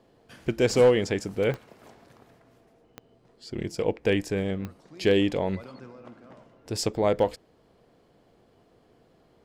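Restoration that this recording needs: clip repair -11.5 dBFS; de-click

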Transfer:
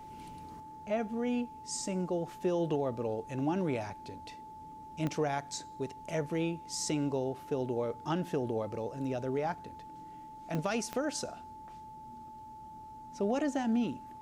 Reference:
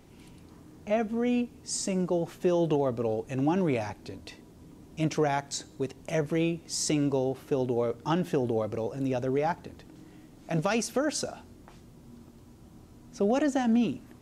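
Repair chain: de-click; band-stop 870 Hz, Q 30; trim 0 dB, from 0.60 s +5.5 dB

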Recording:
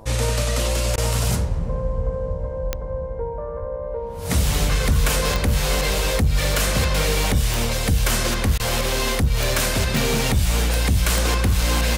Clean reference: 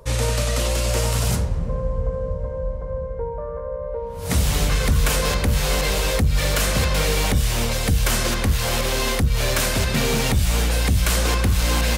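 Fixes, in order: de-click; de-hum 109.1 Hz, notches 9; de-plosive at 3.59 s; interpolate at 0.96/8.58 s, 16 ms

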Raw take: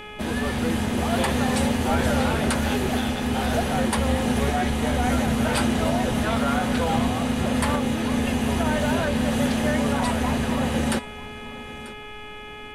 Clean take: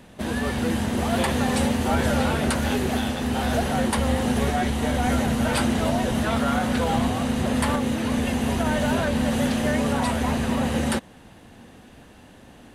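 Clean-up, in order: de-hum 421.2 Hz, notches 8; band-stop 2.4 kHz, Q 30; noise print and reduce 10 dB; inverse comb 940 ms -18 dB

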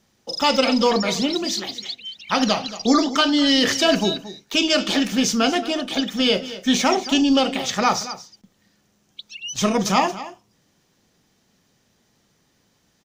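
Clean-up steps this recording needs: interpolate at 5.95/9.56 s, 2.6 ms; inverse comb 226 ms -15 dB

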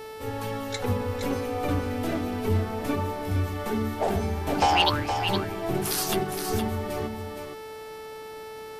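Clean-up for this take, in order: clip repair -11.5 dBFS; de-hum 438.1 Hz, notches 13; expander -32 dBFS, range -21 dB; inverse comb 466 ms -7 dB

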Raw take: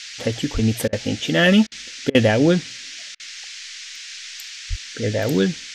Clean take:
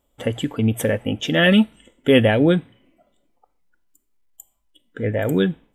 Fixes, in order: de-plosive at 0.53/4.69 s; interpolate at 0.88/1.67/2.10/3.15 s, 46 ms; noise print and reduce 29 dB

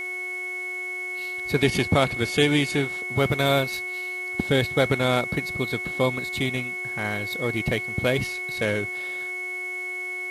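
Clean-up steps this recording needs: de-hum 365.2 Hz, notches 9; band-stop 2.2 kHz, Q 30; noise print and reduce 30 dB

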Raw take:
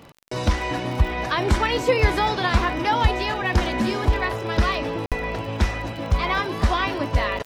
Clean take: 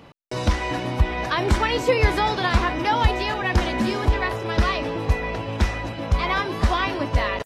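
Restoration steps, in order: de-click; interpolate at 5.06 s, 57 ms

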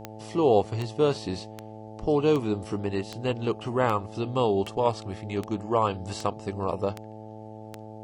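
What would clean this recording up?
de-click; de-hum 108.6 Hz, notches 8

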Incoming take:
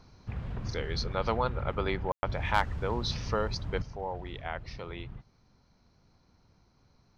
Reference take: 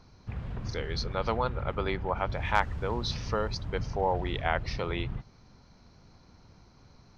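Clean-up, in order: clip repair -14 dBFS; room tone fill 2.12–2.23 s; gain correction +8.5 dB, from 3.82 s

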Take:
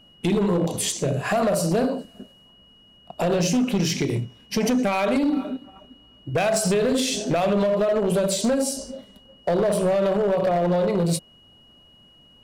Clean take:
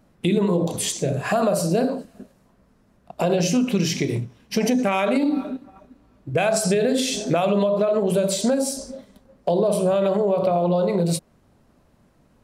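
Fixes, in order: clip repair -16.5 dBFS; band-stop 2.9 kHz, Q 30

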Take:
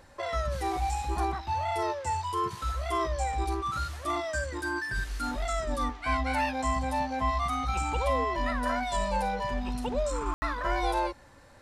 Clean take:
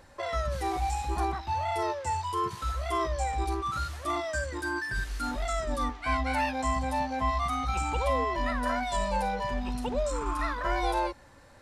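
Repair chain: room tone fill 10.34–10.42 s

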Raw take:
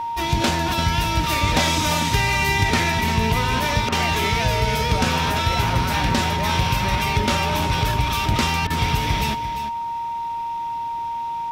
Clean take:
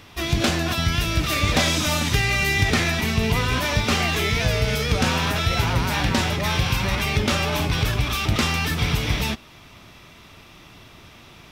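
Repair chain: band-stop 930 Hz, Q 30; interpolate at 3.89/8.67 s, 31 ms; inverse comb 346 ms -10.5 dB

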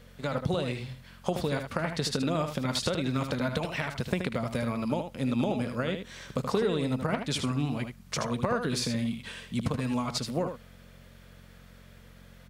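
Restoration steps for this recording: de-hum 45.1 Hz, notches 5; inverse comb 77 ms -7.5 dB

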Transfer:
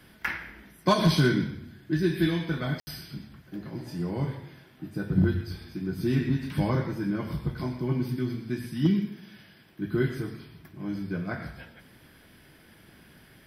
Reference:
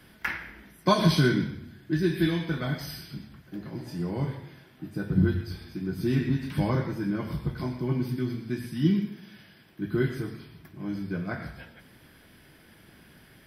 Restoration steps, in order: clip repair -13.5 dBFS; room tone fill 2.80–2.87 s

